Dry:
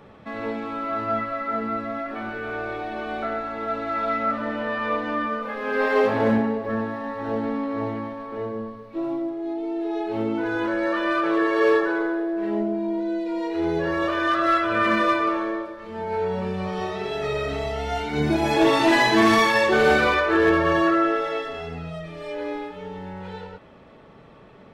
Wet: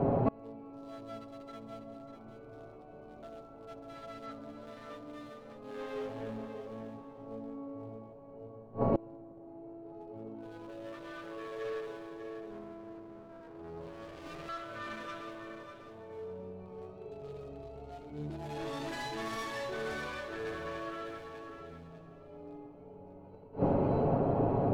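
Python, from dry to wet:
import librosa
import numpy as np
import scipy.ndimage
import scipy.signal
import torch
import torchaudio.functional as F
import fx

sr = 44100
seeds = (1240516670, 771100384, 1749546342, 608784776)

p1 = fx.wiener(x, sr, points=25)
p2 = p1 + fx.echo_feedback(p1, sr, ms=596, feedback_pct=21, wet_db=-9, dry=0)
p3 = fx.dmg_noise_band(p2, sr, seeds[0], low_hz=88.0, high_hz=720.0, level_db=-41.0)
p4 = fx.cheby_harmonics(p3, sr, harmonics=(3, 4, 5, 6), levels_db=(-35, -20, -18, -28), full_scale_db=-7.5)
p5 = fx.low_shelf(p4, sr, hz=84.0, db=8.5)
p6 = p5 + 0.43 * np.pad(p5, (int(7.3 * sr / 1000.0), 0))[:len(p5)]
p7 = fx.echo_heads(p6, sr, ms=68, heads='all three', feedback_pct=42, wet_db=-19.0)
p8 = fx.gate_flip(p7, sr, shuts_db=-22.0, range_db=-29)
p9 = fx.high_shelf(p8, sr, hz=5000.0, db=8.0)
p10 = fx.running_max(p9, sr, window=17, at=(12.51, 14.49))
y = F.gain(torch.from_numpy(p10), 5.5).numpy()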